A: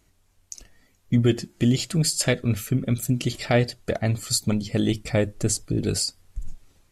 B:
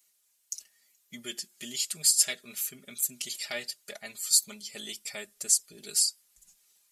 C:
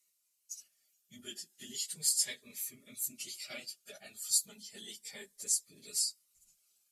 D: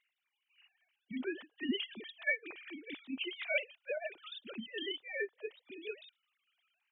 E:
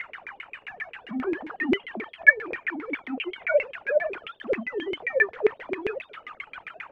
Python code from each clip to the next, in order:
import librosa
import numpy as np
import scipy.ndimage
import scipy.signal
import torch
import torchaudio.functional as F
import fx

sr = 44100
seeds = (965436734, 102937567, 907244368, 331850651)

y1 = np.diff(x, prepend=0.0)
y1 = y1 + 0.92 * np.pad(y1, (int(4.9 * sr / 1000.0), 0))[:len(y1)]
y2 = fx.phase_scramble(y1, sr, seeds[0], window_ms=50)
y2 = fx.notch_cascade(y2, sr, direction='rising', hz=0.33)
y2 = y2 * librosa.db_to_amplitude(-7.0)
y3 = fx.sine_speech(y2, sr)
y3 = y3 * librosa.db_to_amplitude(-2.0)
y4 = y3 + 0.5 * 10.0 ** (-42.5 / 20.0) * np.sign(y3)
y4 = fx.filter_lfo_lowpass(y4, sr, shape='saw_down', hz=7.5, low_hz=380.0, high_hz=2300.0, q=7.5)
y4 = y4 * librosa.db_to_amplitude(5.5)